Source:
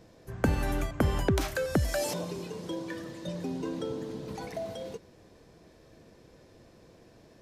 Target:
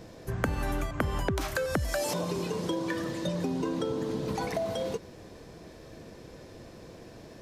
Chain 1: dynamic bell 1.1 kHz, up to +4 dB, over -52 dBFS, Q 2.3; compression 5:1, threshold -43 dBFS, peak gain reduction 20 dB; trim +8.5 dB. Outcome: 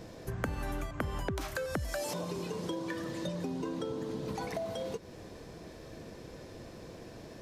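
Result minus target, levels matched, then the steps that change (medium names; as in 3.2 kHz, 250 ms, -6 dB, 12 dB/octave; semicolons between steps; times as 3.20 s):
compression: peak gain reduction +5.5 dB
change: compression 5:1, threshold -36 dBFS, peak gain reduction 14.5 dB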